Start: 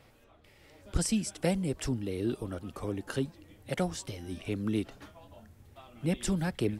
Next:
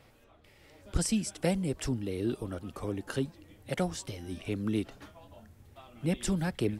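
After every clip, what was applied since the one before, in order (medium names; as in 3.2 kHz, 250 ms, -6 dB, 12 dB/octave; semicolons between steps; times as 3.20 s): no audible change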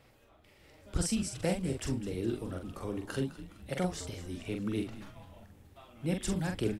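doubling 44 ms -5 dB; frequency-shifting echo 207 ms, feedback 51%, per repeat -100 Hz, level -14.5 dB; trim -3 dB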